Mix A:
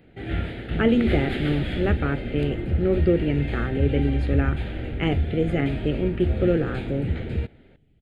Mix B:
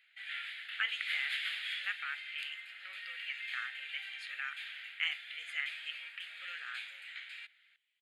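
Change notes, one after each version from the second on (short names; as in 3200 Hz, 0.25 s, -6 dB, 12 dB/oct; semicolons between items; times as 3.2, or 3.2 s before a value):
master: add inverse Chebyshev high-pass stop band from 300 Hz, stop band 80 dB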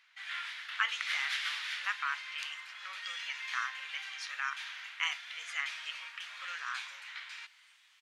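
second sound: entry +1.40 s; master: remove fixed phaser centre 2500 Hz, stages 4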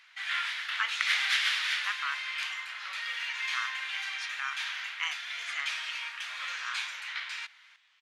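first sound +8.0 dB; second sound: add air absorption 110 m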